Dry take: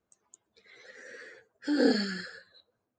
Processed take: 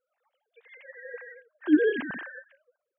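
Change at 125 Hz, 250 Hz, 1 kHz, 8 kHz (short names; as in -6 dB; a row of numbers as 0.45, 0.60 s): n/a, +3.0 dB, -4.5 dB, under -30 dB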